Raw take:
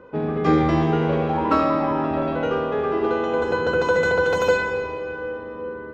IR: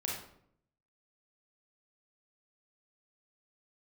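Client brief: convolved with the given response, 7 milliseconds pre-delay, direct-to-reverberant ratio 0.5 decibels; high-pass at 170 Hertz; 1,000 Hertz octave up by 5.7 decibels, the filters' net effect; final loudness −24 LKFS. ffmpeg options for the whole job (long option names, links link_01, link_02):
-filter_complex "[0:a]highpass=170,equalizer=frequency=1000:width_type=o:gain=7,asplit=2[link_01][link_02];[1:a]atrim=start_sample=2205,adelay=7[link_03];[link_02][link_03]afir=irnorm=-1:irlink=0,volume=-3.5dB[link_04];[link_01][link_04]amix=inputs=2:normalize=0,volume=-7.5dB"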